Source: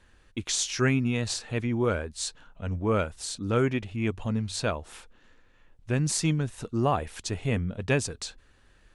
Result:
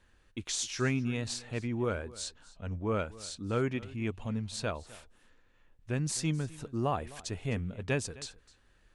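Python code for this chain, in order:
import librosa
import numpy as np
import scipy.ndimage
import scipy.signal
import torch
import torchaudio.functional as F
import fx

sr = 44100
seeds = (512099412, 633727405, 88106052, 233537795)

y = fx.lowpass(x, sr, hz=8700.0, slope=12, at=(2.22, 3.48))
y = y + 10.0 ** (-20.0 / 20.0) * np.pad(y, (int(258 * sr / 1000.0), 0))[:len(y)]
y = F.gain(torch.from_numpy(y), -6.0).numpy()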